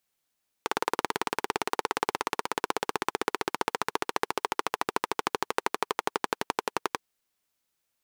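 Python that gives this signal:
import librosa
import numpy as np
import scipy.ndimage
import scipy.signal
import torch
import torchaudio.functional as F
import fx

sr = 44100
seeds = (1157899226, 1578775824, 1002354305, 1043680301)

y = fx.engine_single_rev(sr, seeds[0], length_s=6.37, rpm=2200, resonances_hz=(430.0, 890.0), end_rpm=1300)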